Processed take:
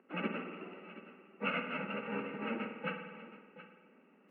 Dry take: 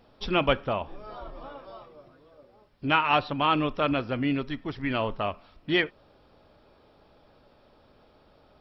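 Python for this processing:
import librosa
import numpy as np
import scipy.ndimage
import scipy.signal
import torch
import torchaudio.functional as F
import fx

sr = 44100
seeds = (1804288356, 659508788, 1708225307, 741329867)

p1 = fx.bit_reversed(x, sr, seeds[0], block=128)
p2 = scipy.signal.sosfilt(scipy.signal.butter(8, 2400.0, 'lowpass', fs=sr, output='sos'), p1)
p3 = fx.peak_eq(p2, sr, hz=350.0, db=13.5, octaves=0.54)
p4 = fx.stretch_vocoder_free(p3, sr, factor=0.5)
p5 = scipy.signal.sosfilt(scipy.signal.butter(8, 190.0, 'highpass', fs=sr, output='sos'), p4)
p6 = fx.rev_spring(p5, sr, rt60_s=1.3, pass_ms=(51,), chirp_ms=60, drr_db=5.5)
p7 = fx.rider(p6, sr, range_db=4, speed_s=0.5)
p8 = p7 + fx.echo_single(p7, sr, ms=723, db=-15.5, dry=0)
y = p8 * librosa.db_to_amplitude(3.0)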